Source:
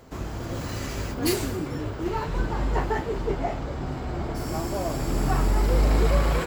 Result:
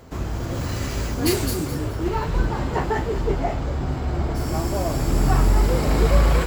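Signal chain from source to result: bell 68 Hz +6.5 dB 1.6 oct; notches 50/100 Hz; on a send: thin delay 0.212 s, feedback 30%, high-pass 4300 Hz, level -4 dB; on the sum: gain +3 dB

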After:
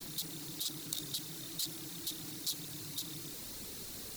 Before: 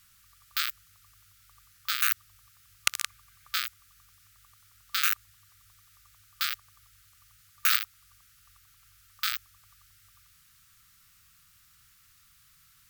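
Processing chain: zero-crossing step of -26.5 dBFS; grains 0.131 s, grains 20/s, spray 10 ms, pitch spread up and down by 0 st; wide varispeed 3.1×; gain -6 dB

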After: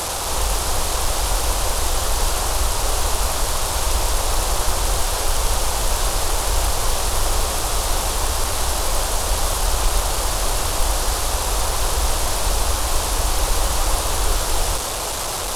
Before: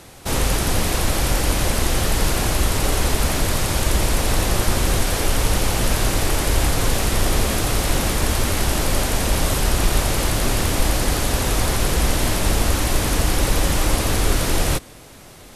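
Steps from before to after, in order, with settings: delta modulation 64 kbps, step -16.5 dBFS; ten-band EQ 125 Hz -10 dB, 250 Hz -12 dB, 1000 Hz +5 dB, 2000 Hz -8 dB; modulation noise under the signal 30 dB

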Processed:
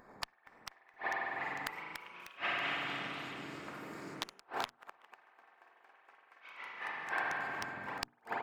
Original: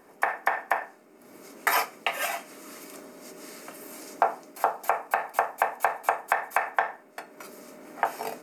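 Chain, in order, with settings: Wiener smoothing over 15 samples; on a send: delay with a stepping band-pass 0.163 s, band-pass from 170 Hz, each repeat 0.7 oct, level -12 dB; on the sum: spring tank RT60 2.7 s, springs 46 ms, chirp 45 ms, DRR -2.5 dB; flipped gate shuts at -17 dBFS, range -40 dB; bell 11000 Hz -9.5 dB 0.58 oct; notches 60/120/180/240/300/360/420 Hz; in parallel at -2.5 dB: compressor, threshold -46 dBFS, peak gain reduction 19.5 dB; on the sum: wavefolder -18.5 dBFS; harmoniser -12 st -9 dB, -7 st -15 dB; passive tone stack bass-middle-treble 5-5-5; echoes that change speed 0.47 s, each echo +2 st, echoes 3, each echo -6 dB; gain +8.5 dB

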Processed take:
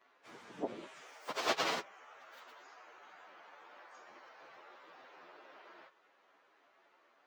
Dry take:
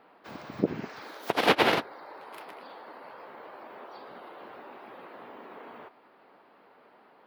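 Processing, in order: pitch shift by moving bins +6.5 st; gain -6.5 dB

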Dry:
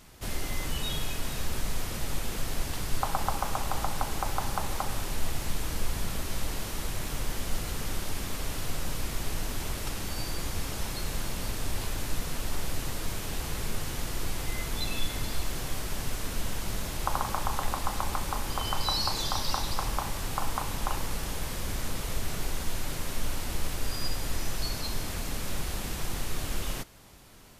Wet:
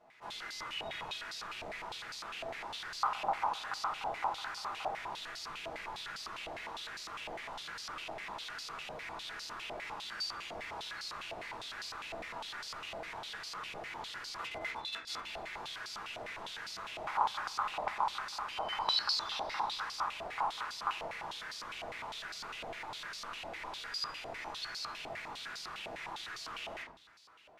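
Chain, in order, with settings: 14.37–15.25 negative-ratio compressor -32 dBFS, ratio -0.5; reverb RT60 0.50 s, pre-delay 5 ms, DRR -4 dB; stepped band-pass 9.9 Hz 700–4700 Hz; gain +1 dB

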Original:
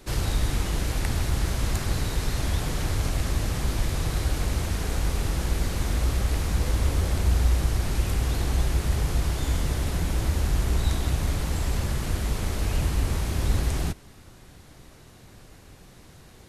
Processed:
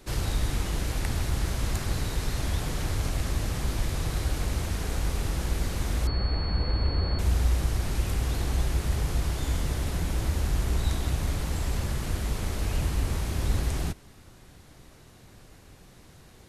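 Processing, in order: 6.07–7.19 pulse-width modulation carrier 4400 Hz; gain -2.5 dB

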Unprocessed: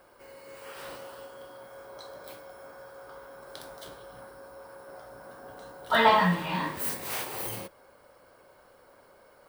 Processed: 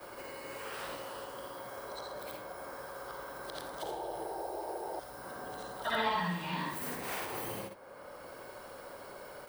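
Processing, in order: short-time reversal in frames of 0.17 s; painted sound noise, 3.82–5, 320–950 Hz -41 dBFS; three-band squash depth 70%; gain +1.5 dB

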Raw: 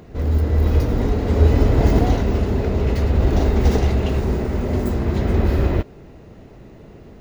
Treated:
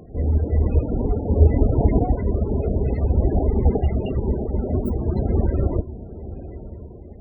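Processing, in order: reverb removal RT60 1 s; diffused feedback echo 0.903 s, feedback 41%, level -14 dB; loudest bins only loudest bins 32

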